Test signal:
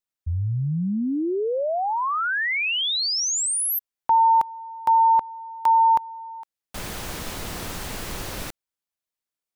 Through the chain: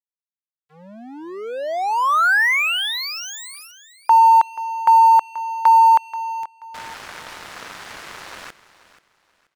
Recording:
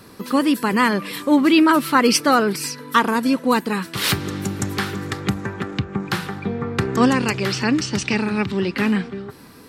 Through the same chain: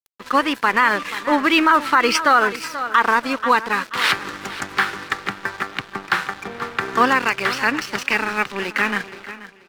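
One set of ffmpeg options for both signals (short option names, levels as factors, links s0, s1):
-af "bandpass=f=1500:t=q:w=1.1:csg=0,aeval=exprs='sgn(val(0))*max(abs(val(0))-0.00794,0)':c=same,areverse,acompressor=mode=upward:threshold=0.00891:ratio=2.5:attack=1.1:release=56:knee=2.83:detection=peak,areverse,aecho=1:1:482|964|1446:0.158|0.0444|0.0124,alimiter=level_in=4.73:limit=0.891:release=50:level=0:latency=1,volume=0.668"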